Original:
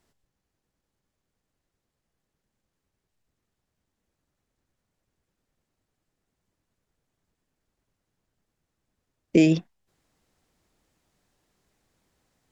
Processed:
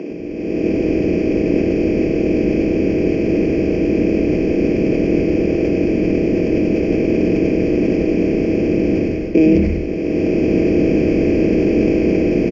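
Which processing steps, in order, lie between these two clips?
spectral levelling over time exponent 0.2; high-pass 200 Hz 24 dB/octave; level rider gain up to 13.5 dB; boxcar filter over 12 samples; frequency-shifting echo 99 ms, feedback 56%, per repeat -120 Hz, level -9 dB; reverberation RT60 0.60 s, pre-delay 4 ms, DRR 12.5 dB; decay stretcher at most 35 dB/s; trim -1 dB

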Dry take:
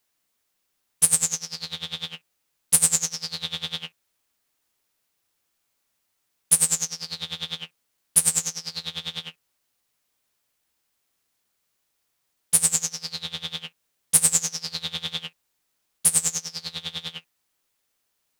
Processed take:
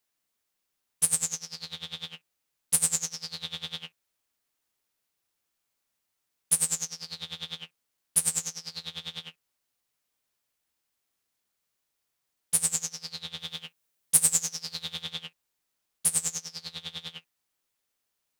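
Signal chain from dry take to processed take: 13.39–15.02 s: treble shelf 8.9 kHz +5.5 dB; trim -6 dB

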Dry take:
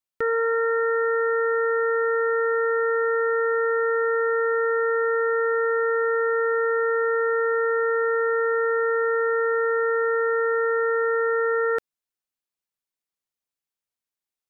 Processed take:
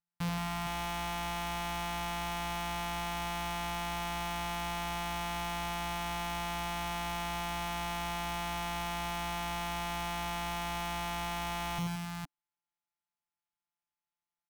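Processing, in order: sorted samples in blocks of 256 samples; elliptic band-stop 280–730 Hz, stop band 50 dB; multi-tap echo 41/84/172/264/447/461 ms -14.5/-6/-10/-18/-17.5/-8 dB; saturation -23.5 dBFS, distortion -10 dB; trim -5.5 dB

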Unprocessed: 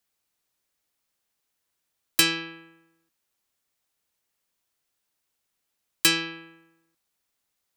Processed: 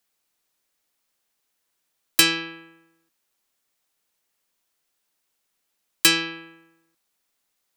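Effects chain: peaking EQ 82 Hz -9 dB 1.3 oct; trim +3.5 dB

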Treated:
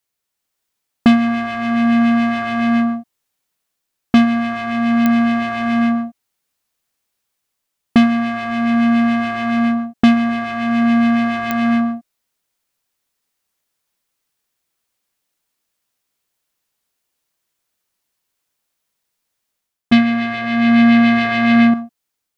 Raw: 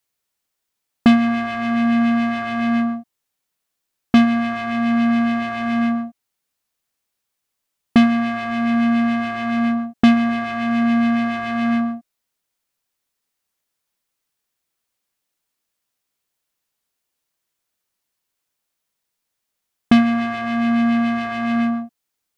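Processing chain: 19.92–21.74 s: graphic EQ 125/250/500/2000/4000 Hz +10/+4/+10/+10/+11 dB; level rider gain up to 4.5 dB; clicks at 5.06/11.51 s, -3 dBFS; trim -1 dB

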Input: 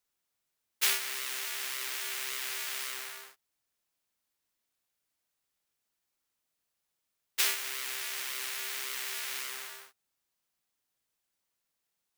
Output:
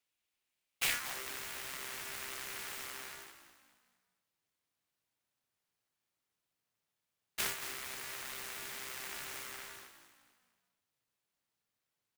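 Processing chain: dynamic bell 4.3 kHz, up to -7 dB, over -46 dBFS, Q 0.7; on a send: frequency-shifting echo 229 ms, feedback 41%, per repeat -53 Hz, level -11 dB; on the sum: high-pass sweep 2.5 kHz -> 110 Hz, 0.86–1.47 s; delay time shaken by noise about 5.1 kHz, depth 0.034 ms; trim -3.5 dB

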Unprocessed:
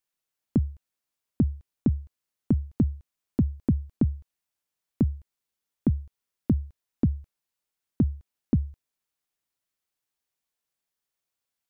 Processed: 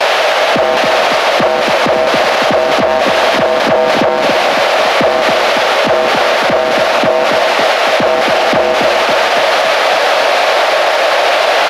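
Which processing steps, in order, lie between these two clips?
one-bit delta coder 64 kbps, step -24 dBFS; resonant high-pass 610 Hz, resonance Q 4; gate with hold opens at -24 dBFS; distance through air 300 m; band-stop 1 kHz, Q 18; in parallel at -5 dB: saturation -29.5 dBFS, distortion -13 dB; on the sum: feedback delay 279 ms, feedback 59%, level -7 dB; on a send at -13.5 dB: reverberation, pre-delay 151 ms; on the sum: loudness maximiser +24 dB; trim -1 dB

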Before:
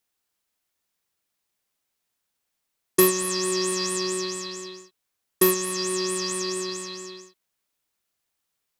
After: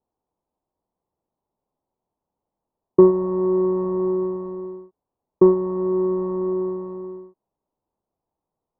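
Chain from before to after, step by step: Chebyshev low-pass 950 Hz, order 4; trim +8 dB

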